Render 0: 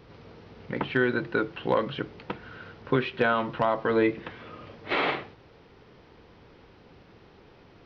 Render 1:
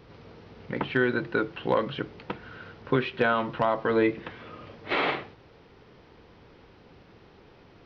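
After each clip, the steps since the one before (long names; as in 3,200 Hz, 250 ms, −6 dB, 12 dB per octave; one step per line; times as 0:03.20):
no processing that can be heard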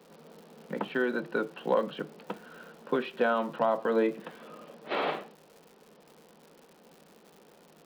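Chebyshev high-pass with heavy ripple 150 Hz, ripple 6 dB
parametric band 2,100 Hz −7 dB 0.24 octaves
surface crackle 200 per second −45 dBFS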